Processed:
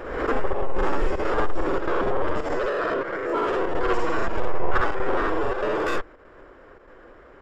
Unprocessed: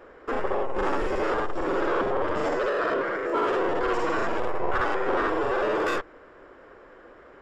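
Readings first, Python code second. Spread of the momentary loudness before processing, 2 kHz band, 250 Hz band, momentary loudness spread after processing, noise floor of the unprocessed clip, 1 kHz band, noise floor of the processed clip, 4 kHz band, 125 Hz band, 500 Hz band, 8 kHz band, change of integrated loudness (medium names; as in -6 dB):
4 LU, +0.5 dB, +1.0 dB, 3 LU, -51 dBFS, +0.5 dB, -49 dBFS, 0.0 dB, +6.0 dB, +0.5 dB, no reading, +0.5 dB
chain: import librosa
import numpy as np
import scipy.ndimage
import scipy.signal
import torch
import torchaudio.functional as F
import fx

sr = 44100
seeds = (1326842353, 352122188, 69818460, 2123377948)

y = fx.low_shelf(x, sr, hz=92.0, db=10.0)
y = fx.chopper(y, sr, hz=1.6, depth_pct=65, duty_pct=85)
y = fx.pre_swell(y, sr, db_per_s=50.0)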